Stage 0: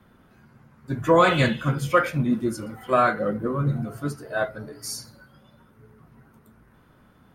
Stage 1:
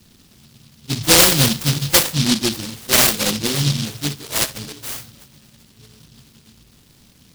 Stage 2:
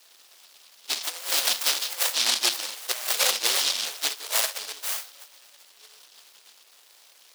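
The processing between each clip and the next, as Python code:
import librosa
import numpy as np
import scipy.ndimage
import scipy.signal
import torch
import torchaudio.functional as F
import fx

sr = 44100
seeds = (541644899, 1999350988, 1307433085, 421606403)

y1 = fx.noise_mod_delay(x, sr, seeds[0], noise_hz=4000.0, depth_ms=0.43)
y1 = F.gain(torch.from_numpy(y1), 5.0).numpy()
y2 = scipy.signal.sosfilt(scipy.signal.butter(4, 570.0, 'highpass', fs=sr, output='sos'), y1)
y2 = fx.over_compress(y2, sr, threshold_db=-20.0, ratio=-0.5)
y2 = F.gain(torch.from_numpy(y2), -3.5).numpy()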